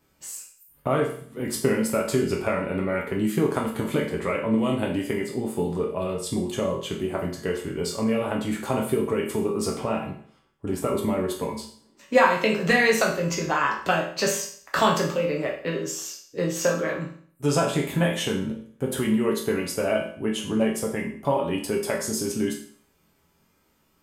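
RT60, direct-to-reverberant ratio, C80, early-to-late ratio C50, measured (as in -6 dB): 0.55 s, -2.0 dB, 10.5 dB, 6.5 dB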